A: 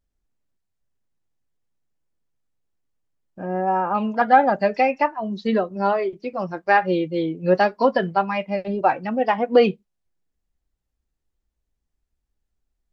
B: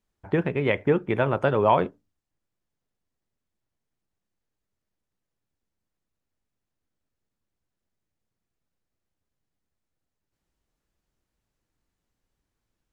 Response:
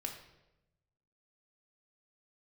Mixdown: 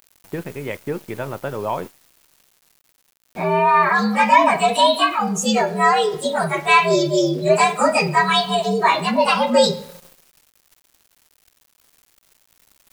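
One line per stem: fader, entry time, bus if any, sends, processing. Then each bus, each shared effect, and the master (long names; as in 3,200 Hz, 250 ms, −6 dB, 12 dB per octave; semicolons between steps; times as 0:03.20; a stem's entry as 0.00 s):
−0.5 dB, 0.00 s, send −3.5 dB, partials spread apart or drawn together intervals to 119%; spectral tilt +3 dB per octave; envelope flattener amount 50%
−5.5 dB, 0.00 s, send −18.5 dB, no processing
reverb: on, RT60 0.95 s, pre-delay 3 ms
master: centre clipping without the shift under −39 dBFS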